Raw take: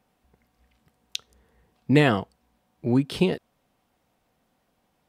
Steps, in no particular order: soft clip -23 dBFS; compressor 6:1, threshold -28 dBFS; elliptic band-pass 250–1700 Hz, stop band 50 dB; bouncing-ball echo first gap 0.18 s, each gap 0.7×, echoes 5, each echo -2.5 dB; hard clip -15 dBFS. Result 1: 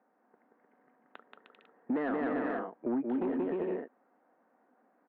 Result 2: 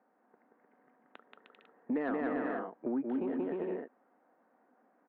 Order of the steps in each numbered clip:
bouncing-ball echo > hard clip > elliptic band-pass > compressor > soft clip; bouncing-ball echo > compressor > hard clip > elliptic band-pass > soft clip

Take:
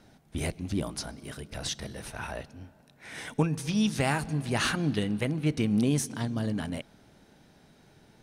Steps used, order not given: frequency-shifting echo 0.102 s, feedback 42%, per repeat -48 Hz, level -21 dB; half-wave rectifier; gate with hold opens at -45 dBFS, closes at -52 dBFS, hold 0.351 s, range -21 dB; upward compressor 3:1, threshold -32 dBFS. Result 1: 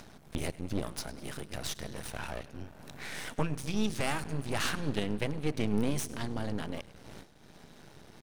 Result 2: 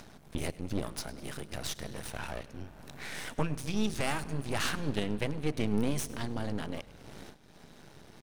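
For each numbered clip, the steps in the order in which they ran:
gate with hold > frequency-shifting echo > half-wave rectifier > upward compressor; half-wave rectifier > frequency-shifting echo > gate with hold > upward compressor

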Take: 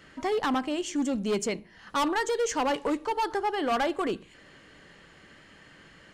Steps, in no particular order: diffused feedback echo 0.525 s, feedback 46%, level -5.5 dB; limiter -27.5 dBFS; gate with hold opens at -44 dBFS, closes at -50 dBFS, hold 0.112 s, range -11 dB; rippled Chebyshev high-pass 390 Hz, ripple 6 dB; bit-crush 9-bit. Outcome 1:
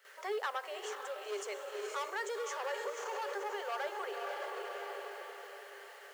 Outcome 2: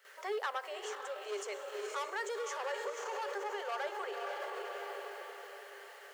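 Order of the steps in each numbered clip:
diffused feedback echo > limiter > bit-crush > rippled Chebyshev high-pass > gate with hold; diffused feedback echo > bit-crush > limiter > rippled Chebyshev high-pass > gate with hold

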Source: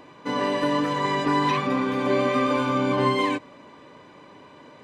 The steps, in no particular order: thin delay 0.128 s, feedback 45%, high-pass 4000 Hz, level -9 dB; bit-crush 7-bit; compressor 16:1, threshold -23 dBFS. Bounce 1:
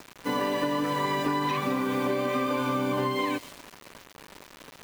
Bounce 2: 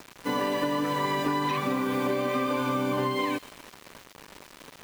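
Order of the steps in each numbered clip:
thin delay > bit-crush > compressor; bit-crush > compressor > thin delay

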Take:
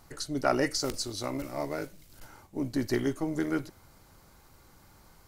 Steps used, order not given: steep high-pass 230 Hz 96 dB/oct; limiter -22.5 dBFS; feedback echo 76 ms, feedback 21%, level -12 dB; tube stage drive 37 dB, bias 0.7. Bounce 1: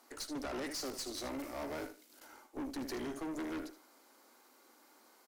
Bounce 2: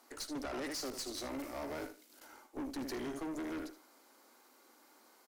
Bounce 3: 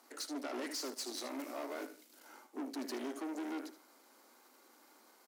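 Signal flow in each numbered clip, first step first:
steep high-pass > limiter > feedback echo > tube stage; feedback echo > limiter > steep high-pass > tube stage; limiter > feedback echo > tube stage > steep high-pass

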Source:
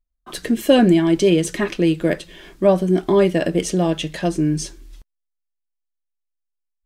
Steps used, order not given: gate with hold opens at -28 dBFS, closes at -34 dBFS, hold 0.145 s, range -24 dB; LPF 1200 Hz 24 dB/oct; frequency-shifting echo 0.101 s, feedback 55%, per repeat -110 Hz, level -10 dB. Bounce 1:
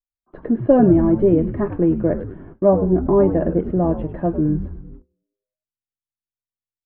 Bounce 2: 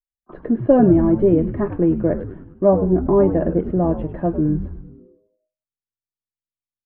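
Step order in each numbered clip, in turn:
LPF > frequency-shifting echo > gate with hold; gate with hold > LPF > frequency-shifting echo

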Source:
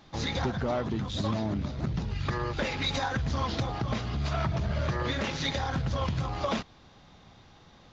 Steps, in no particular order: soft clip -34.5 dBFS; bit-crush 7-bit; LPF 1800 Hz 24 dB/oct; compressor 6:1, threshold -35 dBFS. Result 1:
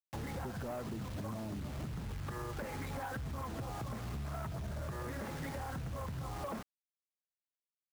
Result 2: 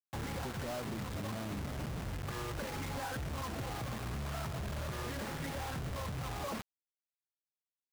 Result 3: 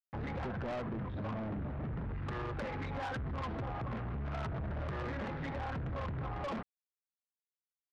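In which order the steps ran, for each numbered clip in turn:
LPF > bit-crush > compressor > soft clip; LPF > compressor > soft clip > bit-crush; bit-crush > LPF > soft clip > compressor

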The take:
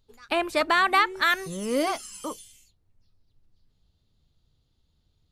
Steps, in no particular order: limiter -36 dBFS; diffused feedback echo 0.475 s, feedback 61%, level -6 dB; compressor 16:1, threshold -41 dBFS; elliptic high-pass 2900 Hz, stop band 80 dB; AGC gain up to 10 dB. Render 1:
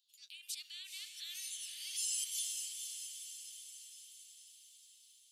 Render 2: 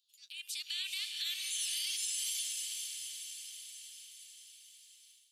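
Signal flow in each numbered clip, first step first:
limiter > elliptic high-pass > compressor > AGC > diffused feedback echo; elliptic high-pass > compressor > diffused feedback echo > limiter > AGC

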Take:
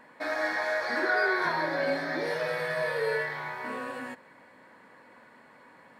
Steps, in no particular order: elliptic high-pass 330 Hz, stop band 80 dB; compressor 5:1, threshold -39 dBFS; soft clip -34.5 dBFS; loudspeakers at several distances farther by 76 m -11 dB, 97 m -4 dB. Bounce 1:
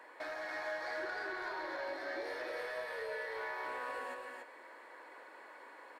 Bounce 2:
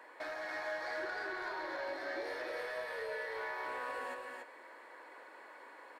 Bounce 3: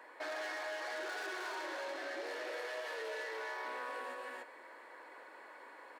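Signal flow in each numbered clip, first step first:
compressor > elliptic high-pass > soft clip > loudspeakers at several distances; elliptic high-pass > compressor > soft clip > loudspeakers at several distances; soft clip > loudspeakers at several distances > compressor > elliptic high-pass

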